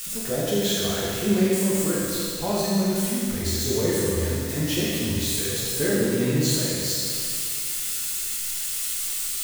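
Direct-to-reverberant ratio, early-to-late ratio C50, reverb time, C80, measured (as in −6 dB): −7.5 dB, −3.5 dB, 2.4 s, −1.5 dB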